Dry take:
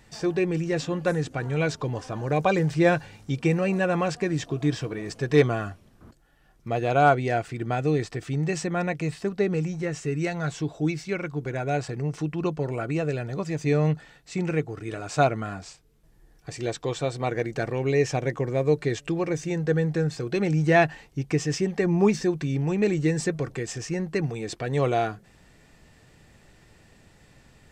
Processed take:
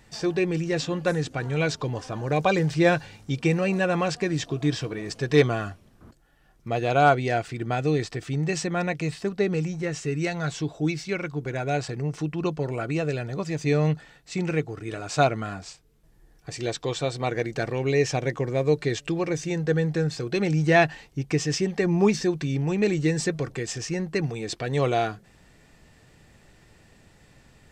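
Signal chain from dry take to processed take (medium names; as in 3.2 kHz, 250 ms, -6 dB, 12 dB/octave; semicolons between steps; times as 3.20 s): dynamic bell 4.2 kHz, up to +5 dB, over -47 dBFS, Q 0.88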